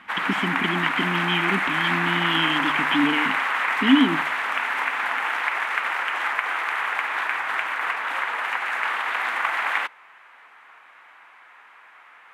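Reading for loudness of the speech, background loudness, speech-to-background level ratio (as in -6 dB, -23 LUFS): -24.5 LUFS, -23.5 LUFS, -1.0 dB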